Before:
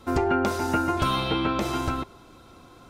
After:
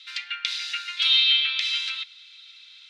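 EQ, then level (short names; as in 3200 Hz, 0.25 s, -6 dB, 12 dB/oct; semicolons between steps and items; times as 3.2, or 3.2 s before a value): steep high-pass 2000 Hz 36 dB/oct; synth low-pass 3800 Hz, resonance Q 3.2; +6.5 dB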